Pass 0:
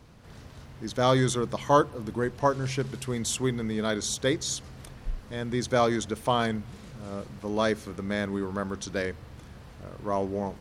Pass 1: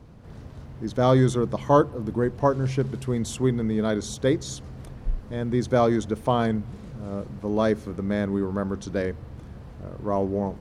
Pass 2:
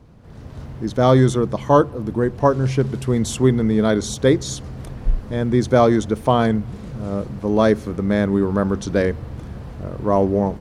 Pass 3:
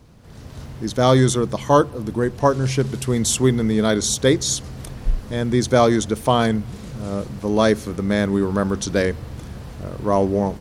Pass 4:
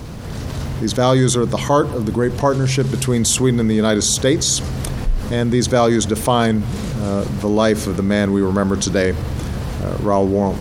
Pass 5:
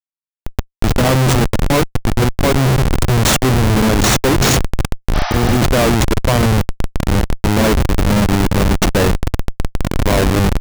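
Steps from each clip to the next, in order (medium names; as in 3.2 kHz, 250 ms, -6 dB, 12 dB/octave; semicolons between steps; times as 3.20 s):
tilt shelf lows +6 dB, about 1.1 kHz
level rider gain up to 8.5 dB
treble shelf 2.8 kHz +11.5 dB; trim -1.5 dB
level flattener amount 50%; trim -1 dB
Schmitt trigger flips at -15 dBFS; spectral replace 5.17–5.55 s, 570–6100 Hz after; trim +5.5 dB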